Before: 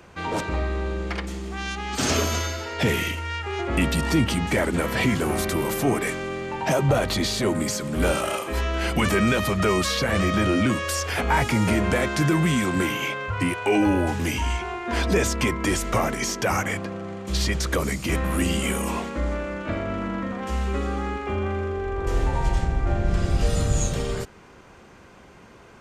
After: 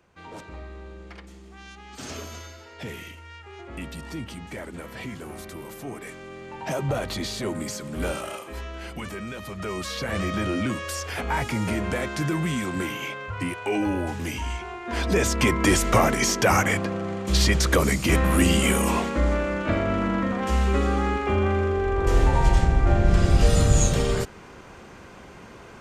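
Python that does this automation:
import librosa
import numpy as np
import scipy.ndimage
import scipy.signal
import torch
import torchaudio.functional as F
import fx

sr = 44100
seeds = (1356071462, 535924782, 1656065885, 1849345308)

y = fx.gain(x, sr, db=fx.line((5.91, -14.0), (6.8, -6.0), (8.04, -6.0), (9.29, -15.0), (10.13, -5.0), (14.79, -5.0), (15.6, 4.0)))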